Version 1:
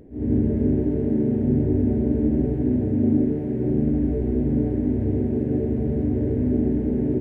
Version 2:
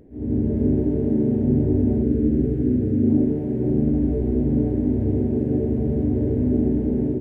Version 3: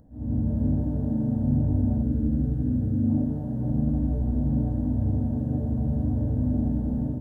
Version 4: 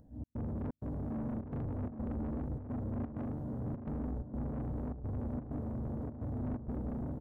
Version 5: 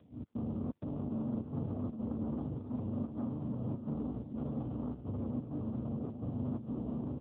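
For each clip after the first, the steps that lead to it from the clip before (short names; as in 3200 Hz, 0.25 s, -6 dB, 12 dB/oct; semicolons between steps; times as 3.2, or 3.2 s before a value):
spectral gain 2.03–3.09, 540–1200 Hz -9 dB; dynamic EQ 1900 Hz, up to -5 dB, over -50 dBFS, Q 1.1; AGC gain up to 4 dB; gain -2.5 dB
fixed phaser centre 940 Hz, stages 4
step gate "xx.xxx.xxx" 128 bpm -60 dB; soft clip -30 dBFS, distortion -7 dB; outdoor echo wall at 140 m, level -8 dB; gain -5 dB
rattling part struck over -43 dBFS, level -43 dBFS; brick-wall FIR low-pass 1500 Hz; gain +2.5 dB; AMR-NB 5.15 kbps 8000 Hz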